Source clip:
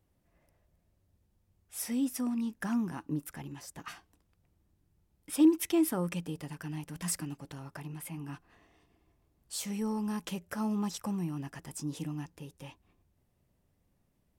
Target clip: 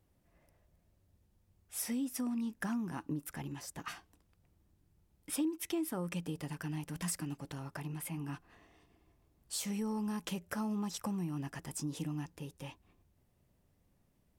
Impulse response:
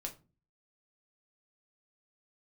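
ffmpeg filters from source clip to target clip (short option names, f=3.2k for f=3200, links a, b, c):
-af "acompressor=threshold=-35dB:ratio=4,volume=1dB"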